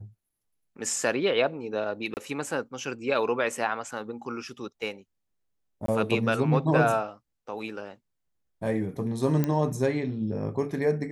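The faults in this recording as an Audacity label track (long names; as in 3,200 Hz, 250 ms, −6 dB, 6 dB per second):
2.140000	2.170000	drop-out 29 ms
5.860000	5.880000	drop-out 23 ms
9.440000	9.440000	click −13 dBFS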